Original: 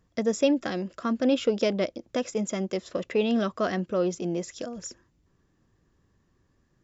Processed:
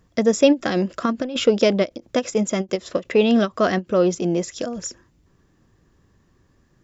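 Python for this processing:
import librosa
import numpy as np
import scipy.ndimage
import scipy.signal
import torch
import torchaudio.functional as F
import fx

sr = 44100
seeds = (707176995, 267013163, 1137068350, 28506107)

y = fx.over_compress(x, sr, threshold_db=-27.0, ratio=-0.5, at=(0.75, 1.44), fade=0.02)
y = fx.end_taper(y, sr, db_per_s=420.0)
y = y * 10.0 ** (8.0 / 20.0)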